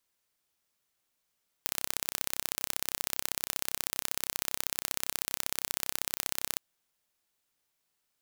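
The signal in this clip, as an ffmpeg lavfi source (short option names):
-f lavfi -i "aevalsrc='0.794*eq(mod(n,1353),0)*(0.5+0.5*eq(mod(n,2706),0))':d=4.93:s=44100"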